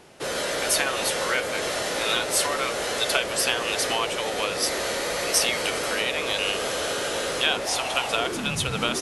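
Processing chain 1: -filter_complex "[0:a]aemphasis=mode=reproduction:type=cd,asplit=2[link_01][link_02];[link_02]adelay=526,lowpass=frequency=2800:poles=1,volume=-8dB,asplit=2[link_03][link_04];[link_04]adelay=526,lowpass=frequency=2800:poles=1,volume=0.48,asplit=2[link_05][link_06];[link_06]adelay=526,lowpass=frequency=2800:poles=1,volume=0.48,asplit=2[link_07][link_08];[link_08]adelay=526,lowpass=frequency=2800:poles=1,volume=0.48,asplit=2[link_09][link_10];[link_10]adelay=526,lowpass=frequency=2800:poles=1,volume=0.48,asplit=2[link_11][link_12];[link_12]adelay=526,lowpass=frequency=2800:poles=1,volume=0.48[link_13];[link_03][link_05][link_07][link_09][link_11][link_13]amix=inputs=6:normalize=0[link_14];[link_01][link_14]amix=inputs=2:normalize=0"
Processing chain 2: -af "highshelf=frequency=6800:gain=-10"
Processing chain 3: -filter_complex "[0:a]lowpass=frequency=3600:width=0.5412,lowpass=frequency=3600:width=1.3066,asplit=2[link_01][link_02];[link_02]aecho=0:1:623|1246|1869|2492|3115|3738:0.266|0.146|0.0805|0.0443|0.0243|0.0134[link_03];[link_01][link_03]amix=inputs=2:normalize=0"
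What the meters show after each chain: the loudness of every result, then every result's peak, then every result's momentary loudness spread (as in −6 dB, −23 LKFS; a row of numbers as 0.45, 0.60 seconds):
−25.5, −26.0, −25.5 LKFS; −8.0, −8.5, −7.5 dBFS; 3, 3, 3 LU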